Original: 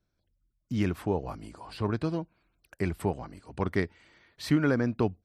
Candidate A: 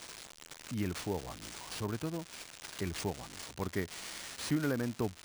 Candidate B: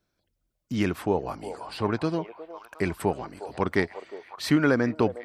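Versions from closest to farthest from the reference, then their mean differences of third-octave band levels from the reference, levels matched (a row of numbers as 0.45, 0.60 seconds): B, A; 3.5, 11.0 decibels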